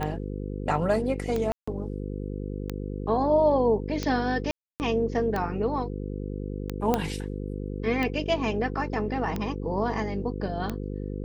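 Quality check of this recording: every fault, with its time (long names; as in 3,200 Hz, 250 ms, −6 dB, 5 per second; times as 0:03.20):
mains buzz 50 Hz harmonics 10 −33 dBFS
scratch tick 45 rpm −16 dBFS
0:01.52–0:01.68: drop-out 155 ms
0:04.51–0:04.80: drop-out 289 ms
0:06.94: click −10 dBFS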